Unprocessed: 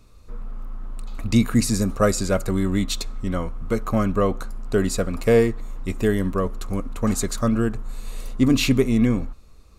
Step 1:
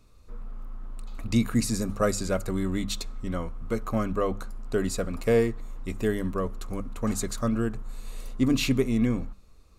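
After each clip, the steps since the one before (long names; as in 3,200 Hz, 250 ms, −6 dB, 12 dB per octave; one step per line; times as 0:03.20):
mains-hum notches 50/100/150/200 Hz
level −5.5 dB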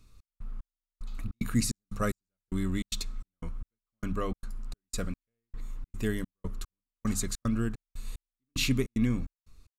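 parametric band 600 Hz −10 dB 1.8 octaves
gate pattern "xx..xx....xxx.x" 149 BPM −60 dB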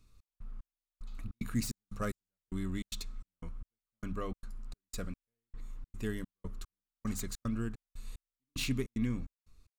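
phase distortion by the signal itself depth 0.055 ms
level −6 dB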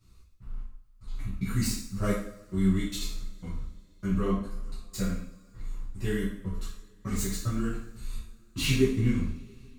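multi-voice chorus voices 6, 0.96 Hz, delay 13 ms, depth 3.2 ms
coupled-rooms reverb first 0.55 s, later 3.5 s, from −27 dB, DRR −9.5 dB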